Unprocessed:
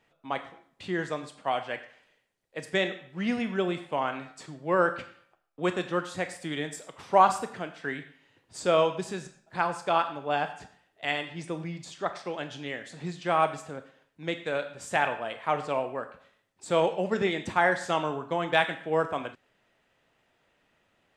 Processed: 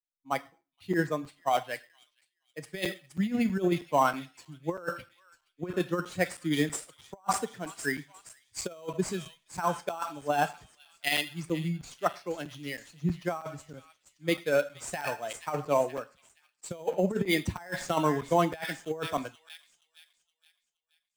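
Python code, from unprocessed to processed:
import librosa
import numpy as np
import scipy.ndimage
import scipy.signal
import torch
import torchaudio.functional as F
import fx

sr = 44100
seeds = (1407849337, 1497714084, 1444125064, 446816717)

p1 = fx.bin_expand(x, sr, power=1.5)
p2 = p1 + fx.echo_wet_highpass(p1, sr, ms=472, feedback_pct=59, hz=5300.0, wet_db=-3.0, dry=0)
p3 = fx.over_compress(p2, sr, threshold_db=-32.0, ratio=-0.5)
p4 = fx.sample_hold(p3, sr, seeds[0], rate_hz=6900.0, jitter_pct=0)
p5 = p3 + (p4 * librosa.db_to_amplitude(-4.0))
p6 = fx.buffer_crackle(p5, sr, first_s=0.61, period_s=0.32, block=256, kind='zero')
y = fx.band_widen(p6, sr, depth_pct=70)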